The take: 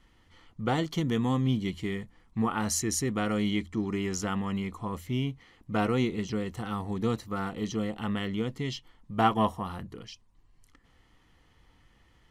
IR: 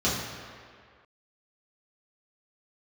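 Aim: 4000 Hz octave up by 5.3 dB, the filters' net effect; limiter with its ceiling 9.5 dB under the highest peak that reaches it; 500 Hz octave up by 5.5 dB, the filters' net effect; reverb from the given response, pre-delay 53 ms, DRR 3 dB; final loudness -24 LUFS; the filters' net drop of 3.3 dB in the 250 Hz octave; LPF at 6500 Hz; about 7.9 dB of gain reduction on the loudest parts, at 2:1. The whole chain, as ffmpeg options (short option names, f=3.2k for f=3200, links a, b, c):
-filter_complex "[0:a]lowpass=6.5k,equalizer=f=250:t=o:g=-6.5,equalizer=f=500:t=o:g=8.5,equalizer=f=4k:t=o:g=8,acompressor=threshold=-30dB:ratio=2,alimiter=limit=-23.5dB:level=0:latency=1,asplit=2[a][b];[1:a]atrim=start_sample=2205,adelay=53[c];[b][c]afir=irnorm=-1:irlink=0,volume=-16.5dB[d];[a][d]amix=inputs=2:normalize=0,volume=7dB"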